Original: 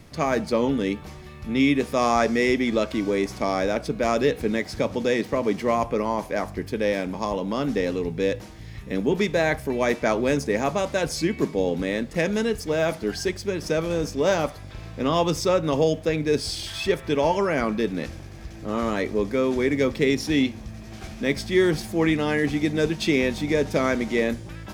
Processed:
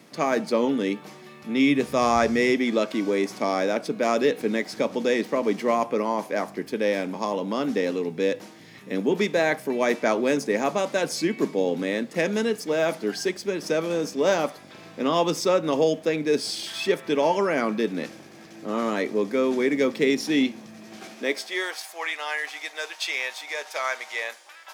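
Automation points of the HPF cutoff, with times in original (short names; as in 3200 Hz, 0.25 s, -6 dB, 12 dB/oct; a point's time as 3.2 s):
HPF 24 dB/oct
1.58 s 190 Hz
2.23 s 52 Hz
2.59 s 190 Hz
20.97 s 190 Hz
21.76 s 740 Hz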